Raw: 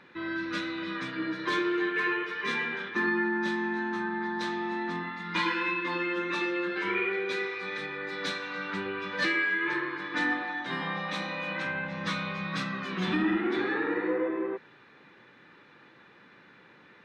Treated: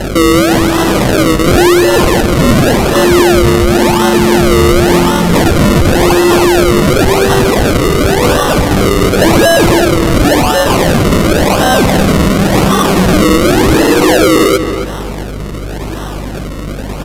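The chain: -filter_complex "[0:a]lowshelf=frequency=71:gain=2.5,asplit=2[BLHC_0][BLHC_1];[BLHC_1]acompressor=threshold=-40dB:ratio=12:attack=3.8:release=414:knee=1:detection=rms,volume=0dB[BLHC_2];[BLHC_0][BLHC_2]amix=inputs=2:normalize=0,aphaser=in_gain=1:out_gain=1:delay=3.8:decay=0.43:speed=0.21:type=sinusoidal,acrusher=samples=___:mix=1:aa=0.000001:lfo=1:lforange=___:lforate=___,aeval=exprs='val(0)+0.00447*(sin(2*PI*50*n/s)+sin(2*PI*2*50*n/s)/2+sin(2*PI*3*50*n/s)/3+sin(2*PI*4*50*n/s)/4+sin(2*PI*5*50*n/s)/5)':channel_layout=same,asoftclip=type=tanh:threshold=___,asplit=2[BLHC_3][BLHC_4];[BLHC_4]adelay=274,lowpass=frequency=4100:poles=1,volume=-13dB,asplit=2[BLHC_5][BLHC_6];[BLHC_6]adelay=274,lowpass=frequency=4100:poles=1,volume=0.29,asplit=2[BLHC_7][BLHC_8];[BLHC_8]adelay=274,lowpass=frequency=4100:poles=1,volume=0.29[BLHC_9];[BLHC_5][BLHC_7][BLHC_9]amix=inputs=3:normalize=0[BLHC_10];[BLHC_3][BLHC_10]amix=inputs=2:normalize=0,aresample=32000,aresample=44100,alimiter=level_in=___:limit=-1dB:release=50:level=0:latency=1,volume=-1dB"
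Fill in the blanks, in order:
37, 37, 0.92, -25.5dB, 27dB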